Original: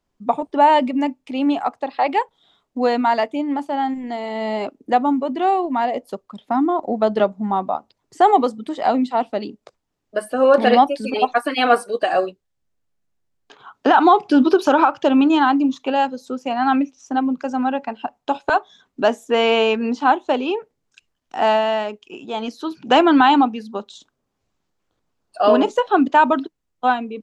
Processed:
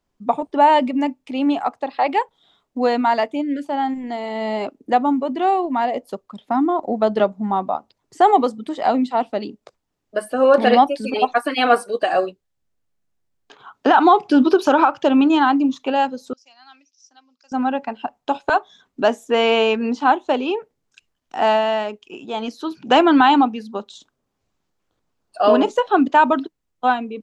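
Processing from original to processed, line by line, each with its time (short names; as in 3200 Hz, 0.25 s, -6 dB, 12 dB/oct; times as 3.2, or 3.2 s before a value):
3.42–3.65 spectral delete 600–1400 Hz
16.33–17.52 band-pass 5200 Hz, Q 5.6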